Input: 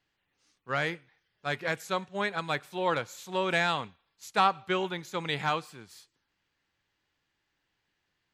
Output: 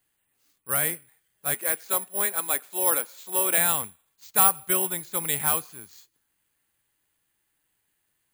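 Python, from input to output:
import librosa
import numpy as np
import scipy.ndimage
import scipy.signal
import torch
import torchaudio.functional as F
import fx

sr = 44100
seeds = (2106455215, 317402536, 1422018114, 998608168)

y = (np.kron(scipy.signal.resample_poly(x, 1, 4), np.eye(4)[0]) * 4)[:len(x)]
y = fx.highpass(y, sr, hz=230.0, slope=24, at=(1.54, 3.58))
y = y * librosa.db_to_amplitude(-1.0)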